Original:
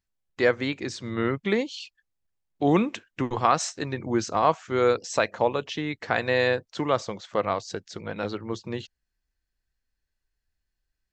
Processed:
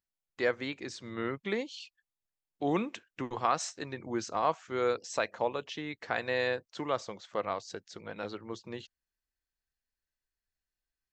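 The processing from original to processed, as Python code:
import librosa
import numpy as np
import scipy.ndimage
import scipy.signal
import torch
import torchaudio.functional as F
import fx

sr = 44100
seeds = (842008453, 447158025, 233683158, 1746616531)

y = fx.low_shelf(x, sr, hz=190.0, db=-7.5)
y = y * 10.0 ** (-7.0 / 20.0)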